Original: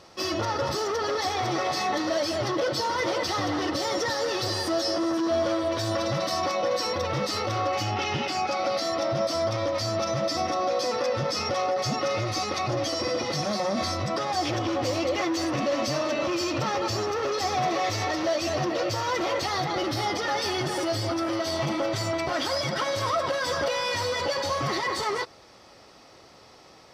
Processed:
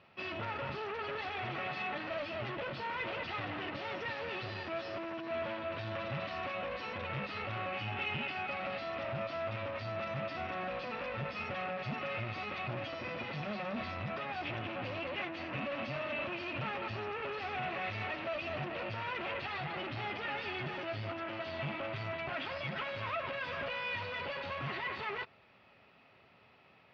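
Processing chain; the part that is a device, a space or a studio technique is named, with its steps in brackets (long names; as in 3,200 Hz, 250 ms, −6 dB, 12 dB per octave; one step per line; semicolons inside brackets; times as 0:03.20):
guitar amplifier (tube saturation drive 26 dB, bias 0.75; bass and treble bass +1 dB, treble −13 dB; loudspeaker in its box 90–3,800 Hz, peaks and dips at 320 Hz −10 dB, 500 Hz −7 dB, 780 Hz −4 dB, 1,100 Hz −4 dB, 2,600 Hz +9 dB)
level −3.5 dB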